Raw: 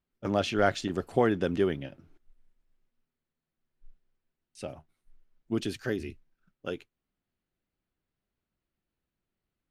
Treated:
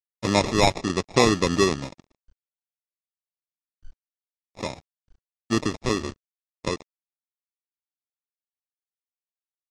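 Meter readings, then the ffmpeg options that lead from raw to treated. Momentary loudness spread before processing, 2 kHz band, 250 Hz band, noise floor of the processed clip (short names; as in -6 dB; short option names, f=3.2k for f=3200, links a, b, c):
16 LU, +6.5 dB, +6.0 dB, under -85 dBFS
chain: -filter_complex "[0:a]asplit=2[a][b];[b]acompressor=threshold=-38dB:ratio=12,volume=0.5dB[c];[a][c]amix=inputs=2:normalize=0,acrusher=samples=29:mix=1:aa=0.000001,aeval=exprs='sgn(val(0))*max(abs(val(0))-0.00531,0)':c=same,lowpass=f=5.9k:t=q:w=1.9,volume=5.5dB" -ar 32000 -c:a libmp3lame -b:a 56k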